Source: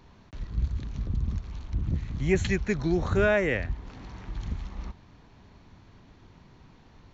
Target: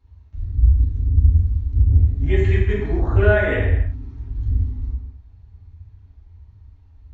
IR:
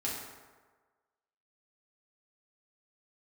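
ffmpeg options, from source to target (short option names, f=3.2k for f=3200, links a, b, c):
-filter_complex "[0:a]afwtdn=0.0141,lowshelf=f=110:t=q:w=3:g=7.5[a];[1:a]atrim=start_sample=2205,afade=t=out:st=0.34:d=0.01,atrim=end_sample=15435[b];[a][b]afir=irnorm=-1:irlink=0"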